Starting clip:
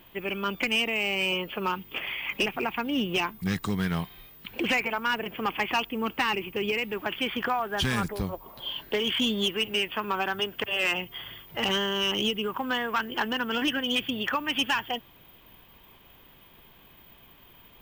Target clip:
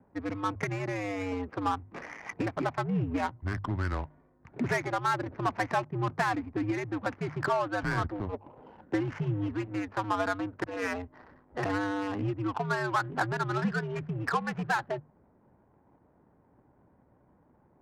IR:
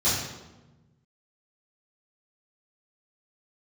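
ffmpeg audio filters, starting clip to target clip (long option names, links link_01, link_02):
-af "highpass=frequency=180:width_type=q:width=0.5412,highpass=frequency=180:width_type=q:width=1.307,lowpass=frequency=2000:width_type=q:width=0.5176,lowpass=frequency=2000:width_type=q:width=0.7071,lowpass=frequency=2000:width_type=q:width=1.932,afreqshift=-97,adynamicsmooth=sensitivity=5.5:basefreq=660,bandreject=frequency=50:width_type=h:width=6,bandreject=frequency=100:width_type=h:width=6,bandreject=frequency=150:width_type=h:width=6"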